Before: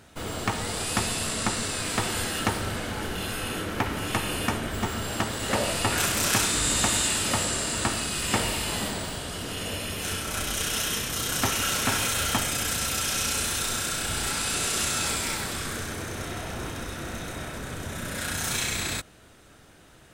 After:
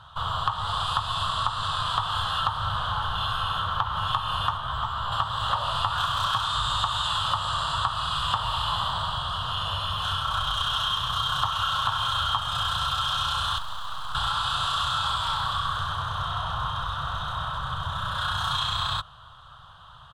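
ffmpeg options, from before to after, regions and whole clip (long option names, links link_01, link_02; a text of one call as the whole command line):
ffmpeg -i in.wav -filter_complex "[0:a]asettb=1/sr,asplit=3[link_01][link_02][link_03];[link_01]atrim=end=4.574[link_04];[link_02]atrim=start=4.57:end=5.12,asetpts=PTS-STARTPTS,afade=type=in:duration=0.004:curve=qsin,afade=type=out:start_time=0.546:duration=0.004:curve=qsin,acrossover=split=500|2700[link_05][link_06][link_07];[link_05]acompressor=threshold=-36dB:ratio=4[link_08];[link_06]acompressor=threshold=-39dB:ratio=4[link_09];[link_07]acompressor=threshold=-47dB:ratio=4[link_10];[link_08][link_09][link_10]amix=inputs=3:normalize=0,asplit=2[link_11][link_12];[link_12]adelay=16,volume=-3dB[link_13];[link_11][link_13]amix=inputs=2:normalize=0,atrim=end_sample=24255[link_14];[link_03]atrim=start=5.116[link_15];[link_04][link_14]acrossfade=duration=0.004:curve1=hsin:curve2=qsin[link_16];[link_16][link_15]acrossfade=duration=0.004:curve1=qsin:curve2=hsin,asettb=1/sr,asplit=3[link_17][link_18][link_19];[link_17]atrim=end=13.584[link_20];[link_18]atrim=start=13.58:end=14.15,asetpts=PTS-STARTPTS,afade=type=in:duration=0.004:curve=qsin,afade=type=out:start_time=0.566:duration=0.004:curve=qsin,acrossover=split=210|1000[link_21][link_22][link_23];[link_21]acompressor=threshold=-40dB:ratio=4[link_24];[link_22]acompressor=threshold=-43dB:ratio=4[link_25];[link_23]acompressor=threshold=-34dB:ratio=4[link_26];[link_24][link_25][link_26]amix=inputs=3:normalize=0,asuperstop=centerf=3200:order=4:qfactor=3,aeval=exprs='abs(val(0))':channel_layout=same[link_27];[link_19]atrim=start=14.146[link_28];[link_20][link_27]acrossfade=duration=0.004:curve1=hsin:curve2=qsin[link_29];[link_29][link_28]acrossfade=duration=0.004:curve1=qsin:curve2=hsin,firequalizer=gain_entry='entry(140,0);entry(210,-21);entry(330,-29);entry(560,-10);entry(1100,14);entry(2200,-23);entry(3200,8);entry(5400,-17);entry(14000,-23)':delay=0.05:min_phase=1,acompressor=threshold=-27dB:ratio=6,volume=4.5dB" out.wav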